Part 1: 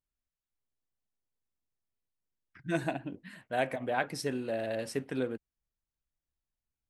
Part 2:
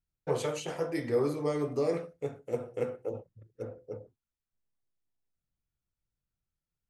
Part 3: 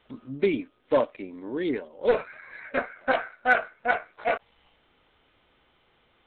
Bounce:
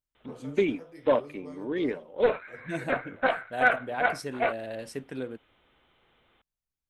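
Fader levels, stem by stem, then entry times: -2.5, -15.5, -1.0 dB; 0.00, 0.00, 0.15 s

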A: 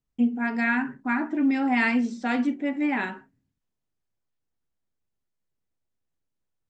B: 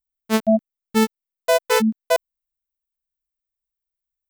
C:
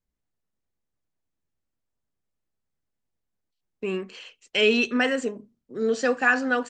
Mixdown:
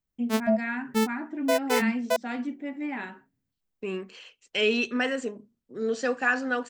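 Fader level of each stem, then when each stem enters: -7.5, -7.0, -4.0 dB; 0.00, 0.00, 0.00 s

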